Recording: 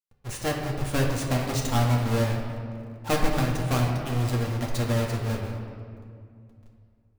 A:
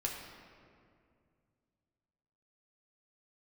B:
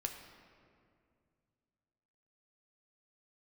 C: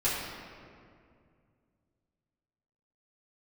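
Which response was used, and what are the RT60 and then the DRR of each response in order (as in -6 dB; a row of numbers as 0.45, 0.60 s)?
A; 2.3, 2.3, 2.3 s; -1.5, 3.0, -11.0 dB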